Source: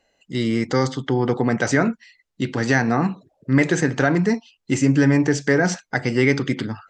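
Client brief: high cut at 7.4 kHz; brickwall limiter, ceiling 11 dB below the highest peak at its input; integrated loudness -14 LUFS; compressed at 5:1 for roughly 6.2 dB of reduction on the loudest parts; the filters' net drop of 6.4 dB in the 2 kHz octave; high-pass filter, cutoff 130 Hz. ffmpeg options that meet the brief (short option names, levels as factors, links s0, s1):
-af "highpass=130,lowpass=7400,equalizer=f=2000:t=o:g=-8,acompressor=threshold=0.1:ratio=5,volume=6.68,alimiter=limit=0.631:level=0:latency=1"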